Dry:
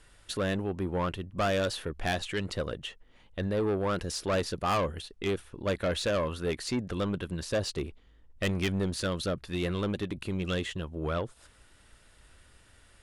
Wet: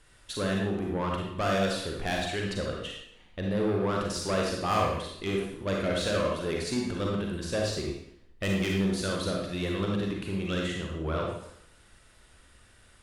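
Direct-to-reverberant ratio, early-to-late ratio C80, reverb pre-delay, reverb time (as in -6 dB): -1.0 dB, 4.5 dB, 35 ms, 0.70 s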